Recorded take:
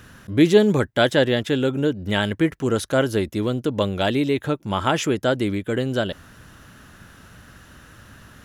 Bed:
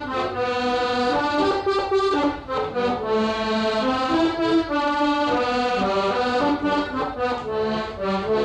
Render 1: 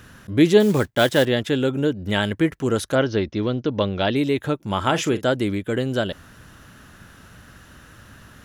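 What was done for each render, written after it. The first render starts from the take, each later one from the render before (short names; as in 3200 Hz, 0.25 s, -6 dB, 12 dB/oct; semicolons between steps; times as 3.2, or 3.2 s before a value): 0.6–1.26 block floating point 5-bit; 2.95–4.16 steep low-pass 6200 Hz 96 dB/oct; 4.83–5.26 doubler 41 ms -13.5 dB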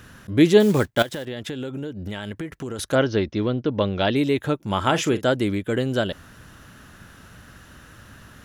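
1.02–2.79 compressor 12:1, threshold -27 dBFS; 3.43–3.85 air absorption 120 m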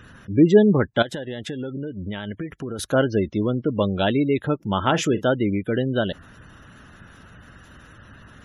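spectral gate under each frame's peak -25 dB strong; dynamic EQ 190 Hz, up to +3 dB, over -37 dBFS, Q 2.3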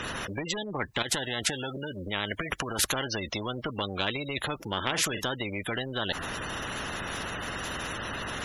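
compressor 3:1, threshold -22 dBFS, peak gain reduction 10.5 dB; spectral compressor 4:1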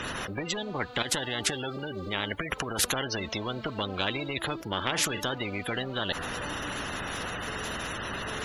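add bed -23 dB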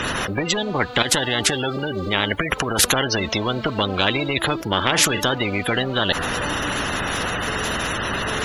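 gain +10.5 dB; limiter -3 dBFS, peak gain reduction 2.5 dB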